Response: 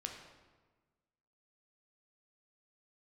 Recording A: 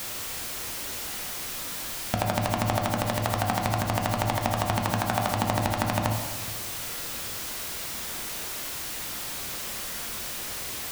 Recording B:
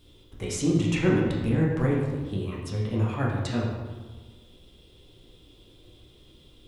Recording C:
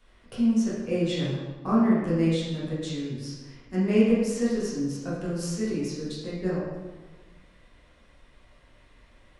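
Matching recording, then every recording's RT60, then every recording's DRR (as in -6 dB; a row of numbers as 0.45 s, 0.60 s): A; 1.4 s, 1.3 s, 1.3 s; 2.0 dB, -4.0 dB, -9.0 dB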